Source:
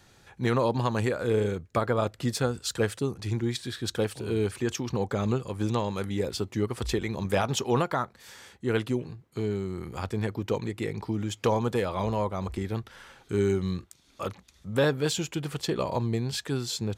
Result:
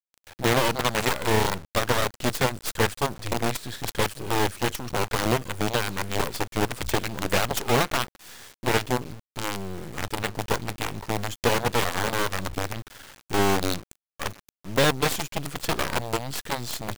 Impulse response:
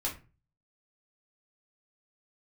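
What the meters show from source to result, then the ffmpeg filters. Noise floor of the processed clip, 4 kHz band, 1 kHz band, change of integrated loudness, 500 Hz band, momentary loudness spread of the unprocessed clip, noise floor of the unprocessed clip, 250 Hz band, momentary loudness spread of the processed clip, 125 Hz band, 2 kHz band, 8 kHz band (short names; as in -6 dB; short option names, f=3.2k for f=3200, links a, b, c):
under -85 dBFS, +7.0 dB, +6.5 dB, +3.0 dB, +0.5 dB, 7 LU, -61 dBFS, -0.5 dB, 11 LU, -1.0 dB, +9.0 dB, +6.5 dB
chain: -af "acrusher=bits=5:dc=4:mix=0:aa=0.000001,aeval=exprs='0.266*(cos(1*acos(clip(val(0)/0.266,-1,1)))-cos(1*PI/2))+0.106*(cos(7*acos(clip(val(0)/0.266,-1,1)))-cos(7*PI/2))':c=same,volume=1dB"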